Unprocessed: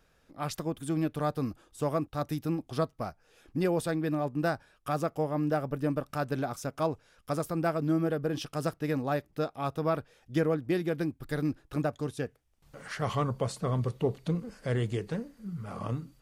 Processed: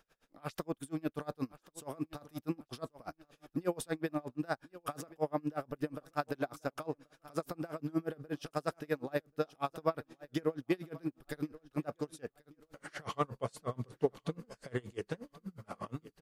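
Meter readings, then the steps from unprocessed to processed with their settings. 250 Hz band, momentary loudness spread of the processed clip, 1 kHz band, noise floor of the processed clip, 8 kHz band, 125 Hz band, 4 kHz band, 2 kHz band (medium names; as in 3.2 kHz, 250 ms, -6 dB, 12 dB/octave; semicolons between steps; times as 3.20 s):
-7.5 dB, 10 LU, -6.0 dB, -80 dBFS, -6.0 dB, -11.5 dB, -6.5 dB, -6.0 dB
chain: peaking EQ 75 Hz -11 dB 2.5 oct; on a send: feedback delay 1083 ms, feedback 36%, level -19 dB; on the sum: logarithmic tremolo 8.4 Hz, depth 31 dB; trim +2 dB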